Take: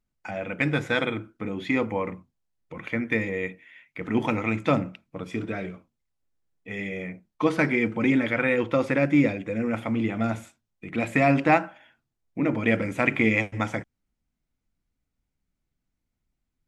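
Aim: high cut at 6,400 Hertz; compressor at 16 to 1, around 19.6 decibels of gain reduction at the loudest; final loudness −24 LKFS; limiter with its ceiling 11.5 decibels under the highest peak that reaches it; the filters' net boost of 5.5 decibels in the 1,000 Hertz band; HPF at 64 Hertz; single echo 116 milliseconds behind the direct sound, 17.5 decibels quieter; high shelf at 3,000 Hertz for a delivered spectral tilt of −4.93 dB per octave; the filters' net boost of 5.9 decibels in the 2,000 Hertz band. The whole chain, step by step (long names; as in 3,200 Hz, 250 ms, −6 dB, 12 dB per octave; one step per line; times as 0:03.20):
high-pass filter 64 Hz
low-pass filter 6,400 Hz
parametric band 1,000 Hz +6.5 dB
parametric band 2,000 Hz +7 dB
high-shelf EQ 3,000 Hz −4.5 dB
downward compressor 16 to 1, threshold −30 dBFS
brickwall limiter −26 dBFS
single-tap delay 116 ms −17.5 dB
level +14 dB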